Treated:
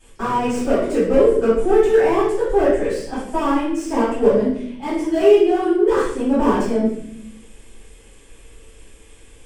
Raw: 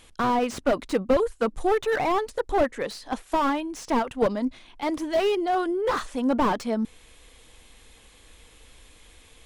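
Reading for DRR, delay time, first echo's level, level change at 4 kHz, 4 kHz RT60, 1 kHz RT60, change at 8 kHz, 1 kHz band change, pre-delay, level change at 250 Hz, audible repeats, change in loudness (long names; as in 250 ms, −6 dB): −13.5 dB, no echo audible, no echo audible, +0.5 dB, 0.65 s, 0.60 s, +4.5 dB, +2.5 dB, 3 ms, +8.0 dB, no echo audible, +8.0 dB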